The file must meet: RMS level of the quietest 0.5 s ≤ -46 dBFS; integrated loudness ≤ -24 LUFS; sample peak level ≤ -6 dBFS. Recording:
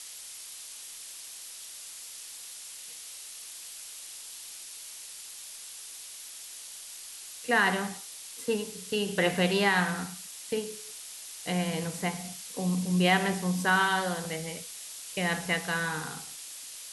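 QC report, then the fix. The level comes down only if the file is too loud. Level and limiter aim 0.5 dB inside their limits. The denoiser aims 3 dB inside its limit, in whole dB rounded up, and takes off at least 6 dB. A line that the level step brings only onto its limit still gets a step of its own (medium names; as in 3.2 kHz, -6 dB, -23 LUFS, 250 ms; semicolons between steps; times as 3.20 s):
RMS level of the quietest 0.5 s -44 dBFS: fail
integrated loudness -31.5 LUFS: pass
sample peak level -12.5 dBFS: pass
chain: noise reduction 6 dB, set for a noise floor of -44 dBFS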